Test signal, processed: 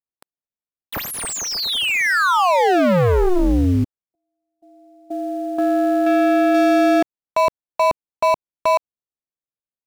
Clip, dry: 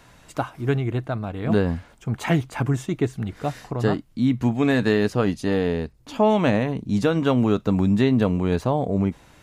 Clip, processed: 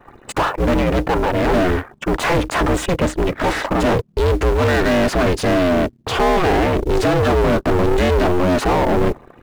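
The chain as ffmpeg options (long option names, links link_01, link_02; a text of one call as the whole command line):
ffmpeg -i in.wav -filter_complex "[0:a]anlmdn=0.0631,adynamicequalizer=threshold=0.00794:dfrequency=7700:dqfactor=1:tfrequency=7700:tqfactor=1:attack=5:release=100:ratio=0.375:range=1.5:mode=cutabove:tftype=bell,aexciter=amount=2.1:drive=2.4:freq=7900,asplit=2[link_01][link_02];[link_02]highpass=frequency=720:poles=1,volume=39dB,asoftclip=type=tanh:threshold=-6dB[link_03];[link_01][link_03]amix=inputs=2:normalize=0,lowpass=frequency=1600:poles=1,volume=-6dB,aeval=exprs='val(0)*sin(2*PI*180*n/s)':channel_layout=same,asplit=2[link_04][link_05];[link_05]acrusher=bits=4:mode=log:mix=0:aa=0.000001,volume=-6dB[link_06];[link_04][link_06]amix=inputs=2:normalize=0,volume=-3dB" out.wav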